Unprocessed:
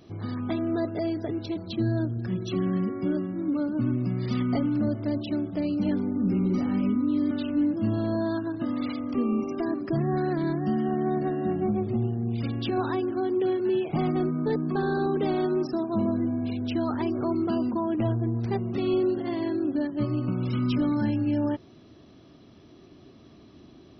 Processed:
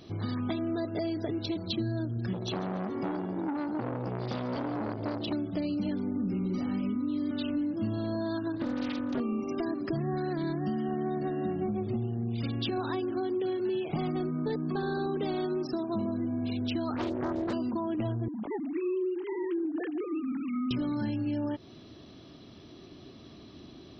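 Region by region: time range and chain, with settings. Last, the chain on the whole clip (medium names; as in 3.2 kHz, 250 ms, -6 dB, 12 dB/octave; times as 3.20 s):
2.33–5.33 s: frequency-shifting echo 142 ms, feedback 49%, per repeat +56 Hz, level -14 dB + transformer saturation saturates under 760 Hz
8.57–9.20 s: hum notches 60/120/180/240/300/360/420/480 Hz + comb of notches 680 Hz + loudspeaker Doppler distortion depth 0.46 ms
16.96–17.53 s: high-pass 43 Hz + loudspeaker Doppler distortion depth 0.6 ms
18.28–20.71 s: formants replaced by sine waves + compression 2:1, threshold -29 dBFS
whole clip: peaking EQ 3.9 kHz +6 dB 0.93 oct; compression, threshold -30 dBFS; trim +1.5 dB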